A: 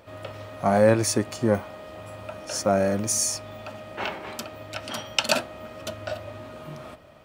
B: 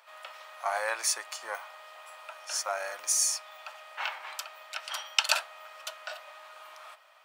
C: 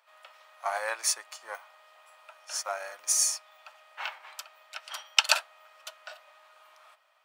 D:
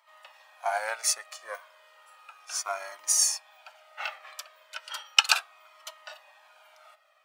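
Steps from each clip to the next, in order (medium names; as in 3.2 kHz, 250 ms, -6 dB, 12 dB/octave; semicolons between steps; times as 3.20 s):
high-pass 870 Hz 24 dB/octave; trim -1.5 dB
upward expansion 1.5:1, over -45 dBFS; trim +3.5 dB
Shepard-style flanger falling 0.34 Hz; trim +5.5 dB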